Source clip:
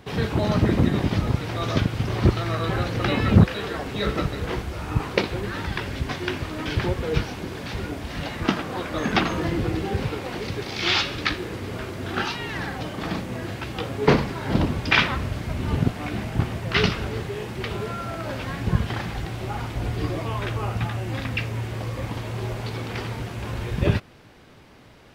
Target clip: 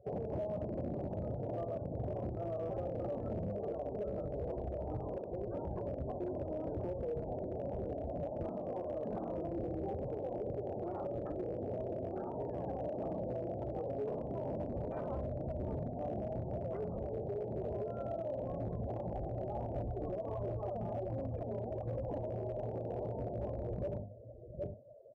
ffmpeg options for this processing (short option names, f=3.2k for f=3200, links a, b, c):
-filter_complex "[0:a]bandreject=f=50:t=h:w=6,bandreject=f=100:t=h:w=6,bandreject=f=150:t=h:w=6,bandreject=f=200:t=h:w=6,bandreject=f=250:t=h:w=6,bandreject=f=300:t=h:w=6,aecho=1:1:59|763:0.299|0.126,asoftclip=type=tanh:threshold=-16.5dB,asettb=1/sr,asplit=3[a][b][c];[a]atrim=end=19.794[d];[b]atrim=start=19.79:end=22.18,asetpts=PTS-STARTPTS,afade=t=in:d=0.004:c=qsin,afade=t=out:st=2.386:d=0.004:c=qsin,aphaser=in_gain=1:out_gain=1:delay=5:decay=0.56:speed=1.4:type=sinusoidal[e];[c]atrim=start=22.176[f];[d][e]acrossfade=d=0.004:c1=hsin:c2=qsin[g];[g][f]acrossfade=d=0.004:c1=qsin:c2=hsin,lowpass=f=610:t=q:w=4.9,afftdn=nr=29:nf=-35,acompressor=threshold=-27dB:ratio=3,alimiter=level_in=1dB:limit=-24dB:level=0:latency=1:release=167,volume=-1dB,asoftclip=type=hard:threshold=-26.5dB,volume=-5.5dB"